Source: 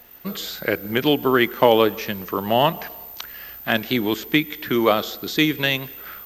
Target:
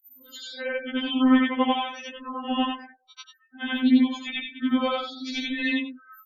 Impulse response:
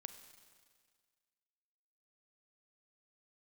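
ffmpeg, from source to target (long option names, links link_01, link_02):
-af "afftfilt=real='re':imag='-im':win_size=8192:overlap=0.75,afftfilt=real='re*gte(hypot(re,im),0.0158)':imag='im*gte(hypot(re,im),0.0158)':win_size=1024:overlap=0.75,asubboost=boost=6.5:cutoff=210,afftfilt=real='re*3.46*eq(mod(b,12),0)':imag='im*3.46*eq(mod(b,12),0)':win_size=2048:overlap=0.75,volume=1dB"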